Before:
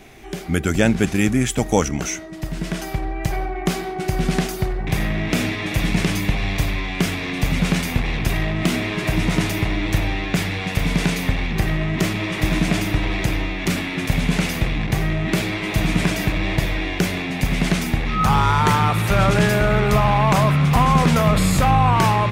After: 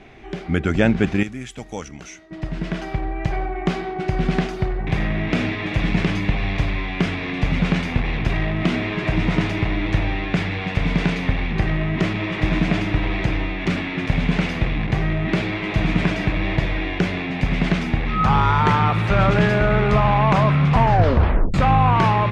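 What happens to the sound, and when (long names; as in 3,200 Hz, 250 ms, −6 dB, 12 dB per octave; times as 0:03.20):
0:01.23–0:02.31: first-order pre-emphasis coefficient 0.8
0:20.74: tape stop 0.80 s
whole clip: low-pass filter 3,200 Hz 12 dB per octave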